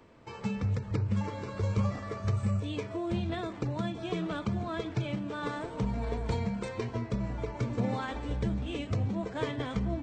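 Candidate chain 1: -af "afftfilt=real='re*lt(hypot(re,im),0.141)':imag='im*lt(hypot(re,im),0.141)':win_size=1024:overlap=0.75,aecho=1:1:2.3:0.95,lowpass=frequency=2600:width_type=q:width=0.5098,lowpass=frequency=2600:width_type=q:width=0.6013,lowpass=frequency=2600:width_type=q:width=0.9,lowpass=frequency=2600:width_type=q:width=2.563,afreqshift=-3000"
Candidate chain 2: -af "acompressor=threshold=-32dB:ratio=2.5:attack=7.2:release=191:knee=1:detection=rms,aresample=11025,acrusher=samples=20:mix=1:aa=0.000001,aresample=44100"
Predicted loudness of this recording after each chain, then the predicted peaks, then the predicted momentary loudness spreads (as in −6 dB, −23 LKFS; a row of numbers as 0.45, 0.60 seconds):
−34.0, −37.0 LKFS; −21.0, −22.5 dBFS; 4, 3 LU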